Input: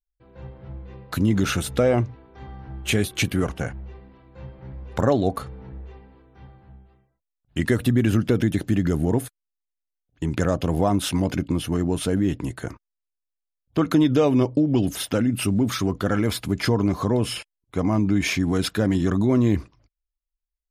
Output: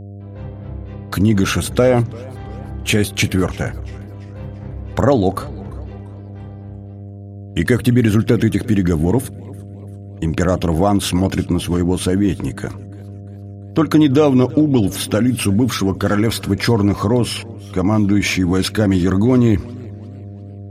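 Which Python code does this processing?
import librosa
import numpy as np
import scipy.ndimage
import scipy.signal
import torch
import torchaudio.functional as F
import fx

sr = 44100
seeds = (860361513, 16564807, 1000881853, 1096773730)

y = fx.dmg_buzz(x, sr, base_hz=100.0, harmonics=7, level_db=-39.0, tilt_db=-8, odd_only=False)
y = fx.echo_warbled(y, sr, ms=344, feedback_pct=48, rate_hz=2.8, cents=132, wet_db=-22.0)
y = F.gain(torch.from_numpy(y), 6.0).numpy()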